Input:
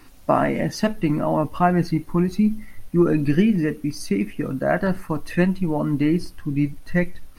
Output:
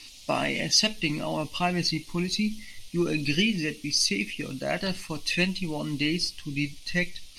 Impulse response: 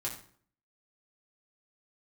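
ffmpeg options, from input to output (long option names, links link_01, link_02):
-af "aexciter=amount=9.7:drive=8.9:freq=2400,lowpass=4900,volume=-9dB"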